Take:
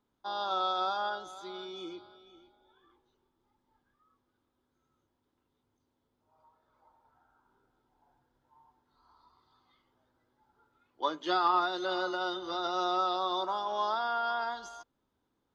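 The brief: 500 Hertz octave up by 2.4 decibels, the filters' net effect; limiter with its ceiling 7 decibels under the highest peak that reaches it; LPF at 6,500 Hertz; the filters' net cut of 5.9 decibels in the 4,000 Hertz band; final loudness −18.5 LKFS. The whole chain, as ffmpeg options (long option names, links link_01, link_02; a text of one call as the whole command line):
ffmpeg -i in.wav -af "lowpass=6500,equalizer=frequency=500:width_type=o:gain=3.5,equalizer=frequency=4000:width_type=o:gain=-6.5,volume=15dB,alimiter=limit=-7.5dB:level=0:latency=1" out.wav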